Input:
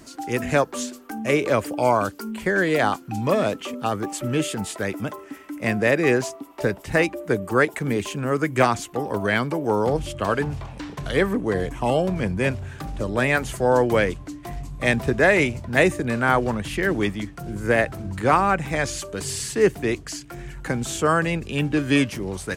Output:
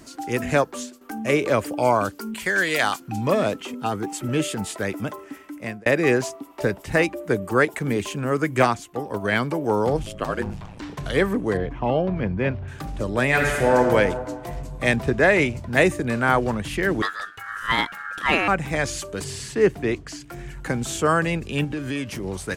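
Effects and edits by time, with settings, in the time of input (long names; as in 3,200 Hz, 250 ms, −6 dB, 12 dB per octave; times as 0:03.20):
0:00.60–0:01.01: fade out, to −10.5 dB
0:02.34–0:03.00: tilt shelving filter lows −8 dB, about 1,200 Hz
0:03.62–0:04.29: notch comb filter 580 Hz
0:05.20–0:05.86: fade out equal-power
0:08.66–0:09.32: expander for the loud parts, over −33 dBFS
0:10.03–0:10.82: ring modulation 54 Hz
0:11.57–0:12.68: high-frequency loss of the air 290 metres
0:13.26–0:13.77: thrown reverb, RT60 1.9 s, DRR −0.5 dB
0:14.96–0:15.57: high-shelf EQ 7,900 Hz −6.5 dB
0:17.02–0:18.48: ring modulation 1,500 Hz
0:19.24–0:20.20: low-pass filter 3,700 Hz 6 dB per octave
0:21.64–0:22.24: downward compressor 4 to 1, threshold −25 dBFS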